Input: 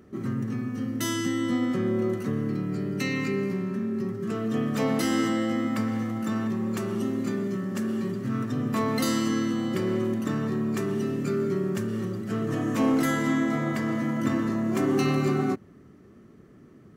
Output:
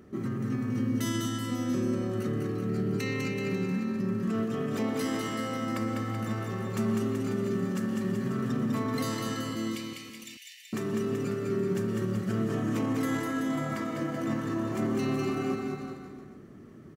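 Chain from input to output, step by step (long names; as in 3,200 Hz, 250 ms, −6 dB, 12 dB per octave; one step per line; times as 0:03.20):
0:09.55–0:10.73: Butterworth high-pass 2,100 Hz 72 dB per octave
brickwall limiter −24.5 dBFS, peak gain reduction 11 dB
bouncing-ball delay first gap 200 ms, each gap 0.9×, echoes 5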